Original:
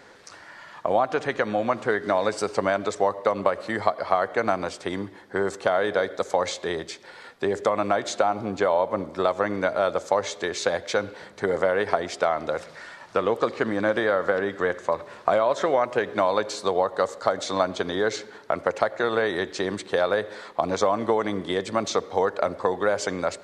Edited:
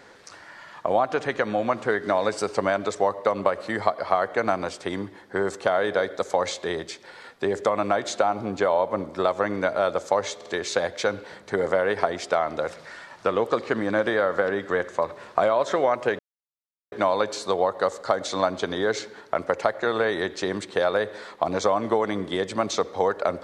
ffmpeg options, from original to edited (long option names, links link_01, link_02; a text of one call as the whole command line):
ffmpeg -i in.wav -filter_complex "[0:a]asplit=4[link_01][link_02][link_03][link_04];[link_01]atrim=end=10.412[link_05];[link_02]atrim=start=10.358:end=10.412[link_06];[link_03]atrim=start=10.358:end=16.09,asetpts=PTS-STARTPTS,afade=type=out:start_time=5.728:duration=0.004:curve=hsin,apad=pad_dur=0.73[link_07];[link_04]atrim=start=16.09,asetpts=PTS-STARTPTS,afade=type=in:duration=0.004:curve=hsin[link_08];[link_05][link_06]acrossfade=duration=0.004:curve1=hsin:curve2=hsin[link_09];[link_07][link_08]concat=n=2:v=0:a=1[link_10];[link_09][link_10]acrossfade=duration=0.004:curve1=hsin:curve2=hsin" out.wav